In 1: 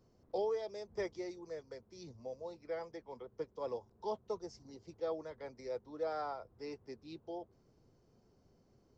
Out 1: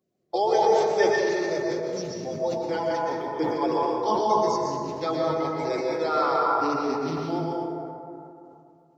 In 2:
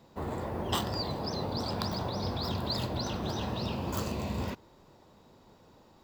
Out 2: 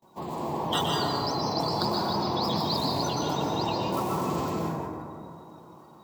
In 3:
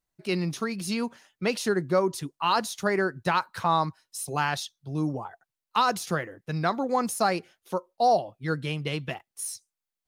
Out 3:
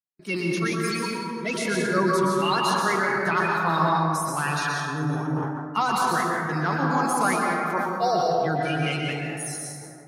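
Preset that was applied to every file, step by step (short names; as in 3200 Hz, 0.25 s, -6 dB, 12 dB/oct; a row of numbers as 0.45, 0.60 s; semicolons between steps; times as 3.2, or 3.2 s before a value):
bin magnitudes rounded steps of 30 dB; HPF 130 Hz 12 dB/oct; notches 60/120/180/240/300 Hz; gate with hold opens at -51 dBFS; bell 520 Hz -7 dB 0.75 oct; flange 0.51 Hz, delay 5.2 ms, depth 2.1 ms, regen +53%; plate-style reverb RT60 2.7 s, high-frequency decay 0.35×, pre-delay 0.105 s, DRR -3 dB; sustainer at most 34 dB/s; normalise peaks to -9 dBFS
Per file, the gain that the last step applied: +20.0, +7.5, +4.5 dB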